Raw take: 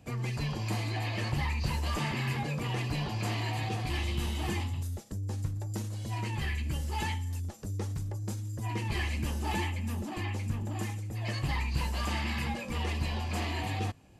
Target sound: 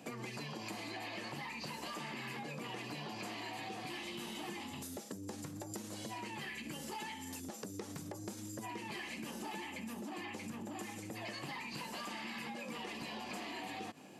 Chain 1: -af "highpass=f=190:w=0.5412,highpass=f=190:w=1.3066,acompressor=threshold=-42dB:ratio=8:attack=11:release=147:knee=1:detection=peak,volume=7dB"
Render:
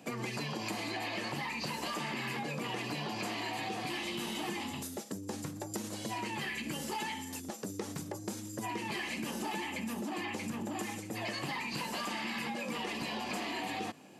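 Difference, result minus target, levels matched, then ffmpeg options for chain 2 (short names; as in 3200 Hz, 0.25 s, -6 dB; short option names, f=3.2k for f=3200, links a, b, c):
compressor: peak gain reduction -6.5 dB
-af "highpass=f=190:w=0.5412,highpass=f=190:w=1.3066,acompressor=threshold=-49.5dB:ratio=8:attack=11:release=147:knee=1:detection=peak,volume=7dB"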